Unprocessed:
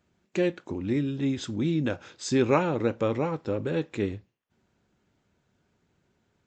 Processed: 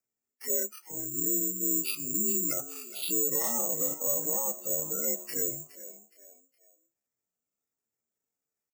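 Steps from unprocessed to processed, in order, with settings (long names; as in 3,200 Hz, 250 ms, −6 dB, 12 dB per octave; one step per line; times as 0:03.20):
partials spread apart or drawn together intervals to 82%
high-pass filter 67 Hz 6 dB per octave
gate on every frequency bin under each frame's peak −20 dB strong
low-pass that shuts in the quiet parts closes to 2,000 Hz, open at −23.5 dBFS
noise reduction from a noise print of the clip's start 18 dB
graphic EQ with 10 bands 125 Hz −9 dB, 250 Hz −5 dB, 1,000 Hz −5 dB, 2,000 Hz +9 dB, 4,000 Hz −12 dB
brickwall limiter −29 dBFS, peak gain reduction 11.5 dB
hum removal 298.2 Hz, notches 30
pitch shifter +8.5 semitones
echo with shifted repeats 308 ms, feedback 35%, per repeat +81 Hz, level −15.5 dB
wrong playback speed 45 rpm record played at 33 rpm
bad sample-rate conversion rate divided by 6×, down none, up zero stuff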